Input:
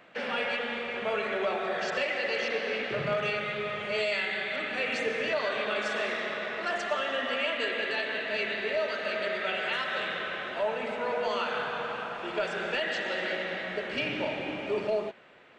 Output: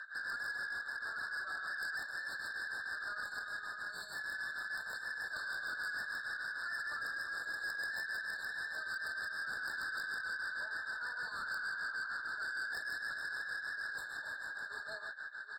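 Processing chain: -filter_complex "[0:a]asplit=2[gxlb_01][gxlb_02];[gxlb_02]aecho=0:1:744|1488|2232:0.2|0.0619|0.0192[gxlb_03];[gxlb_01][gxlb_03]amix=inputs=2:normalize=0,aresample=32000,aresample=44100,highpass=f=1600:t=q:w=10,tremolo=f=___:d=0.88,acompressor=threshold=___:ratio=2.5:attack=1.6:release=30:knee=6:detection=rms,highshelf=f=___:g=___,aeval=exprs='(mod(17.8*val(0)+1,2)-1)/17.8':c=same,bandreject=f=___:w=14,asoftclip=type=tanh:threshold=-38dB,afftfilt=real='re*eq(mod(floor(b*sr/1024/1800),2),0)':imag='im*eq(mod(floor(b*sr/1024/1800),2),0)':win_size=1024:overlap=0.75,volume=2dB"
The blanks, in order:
6.5, -42dB, 2200, 8.5, 5900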